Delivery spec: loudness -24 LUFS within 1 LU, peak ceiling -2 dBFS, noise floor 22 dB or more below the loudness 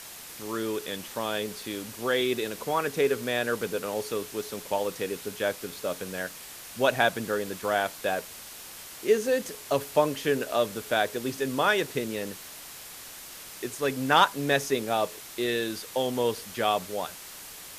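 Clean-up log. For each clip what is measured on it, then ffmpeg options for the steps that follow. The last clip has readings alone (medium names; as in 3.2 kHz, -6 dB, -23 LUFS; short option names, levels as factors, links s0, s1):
noise floor -44 dBFS; noise floor target -51 dBFS; loudness -28.5 LUFS; peak level -7.5 dBFS; loudness target -24.0 LUFS
-> -af "afftdn=nr=7:nf=-44"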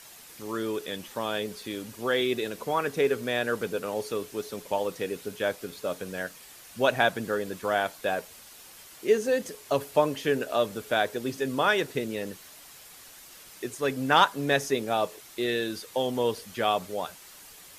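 noise floor -49 dBFS; noise floor target -51 dBFS
-> -af "afftdn=nr=6:nf=-49"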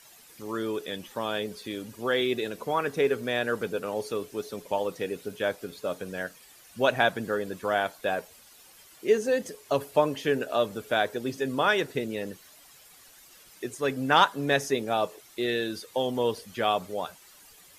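noise floor -54 dBFS; loudness -28.5 LUFS; peak level -7.0 dBFS; loudness target -24.0 LUFS
-> -af "volume=1.68"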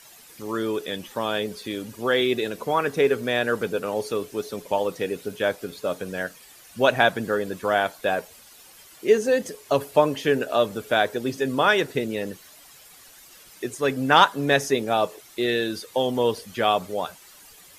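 loudness -24.0 LUFS; peak level -2.5 dBFS; noise floor -49 dBFS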